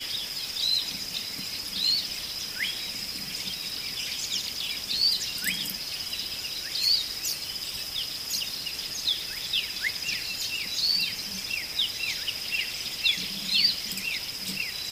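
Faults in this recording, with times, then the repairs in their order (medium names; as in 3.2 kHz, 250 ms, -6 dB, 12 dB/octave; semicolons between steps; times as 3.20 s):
crackle 22 per s -37 dBFS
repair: de-click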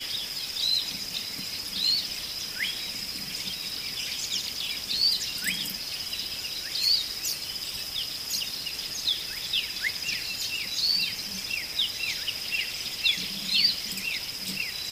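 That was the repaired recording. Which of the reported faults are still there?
nothing left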